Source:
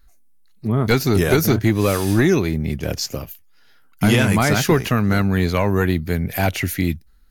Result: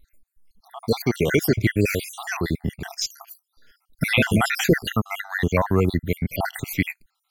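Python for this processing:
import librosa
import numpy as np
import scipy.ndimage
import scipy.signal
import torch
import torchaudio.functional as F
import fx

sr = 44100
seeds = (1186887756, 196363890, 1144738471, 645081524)

y = fx.spec_dropout(x, sr, seeds[0], share_pct=63)
y = fx.dynamic_eq(y, sr, hz=2200.0, q=1.6, threshold_db=-44.0, ratio=4.0, max_db=6)
y = fx.notch_comb(y, sr, f0_hz=1300.0, at=(0.68, 1.57))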